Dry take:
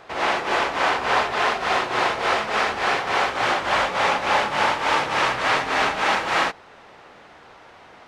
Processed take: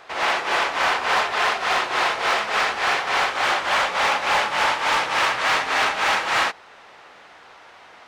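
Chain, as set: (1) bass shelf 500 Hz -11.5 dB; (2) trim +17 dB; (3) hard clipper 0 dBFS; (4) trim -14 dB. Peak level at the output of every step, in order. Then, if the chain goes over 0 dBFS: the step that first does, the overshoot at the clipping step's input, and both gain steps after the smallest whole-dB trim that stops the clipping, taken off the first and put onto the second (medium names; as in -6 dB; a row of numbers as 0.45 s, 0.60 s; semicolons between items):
-8.5 dBFS, +8.5 dBFS, 0.0 dBFS, -14.0 dBFS; step 2, 8.5 dB; step 2 +8 dB, step 4 -5 dB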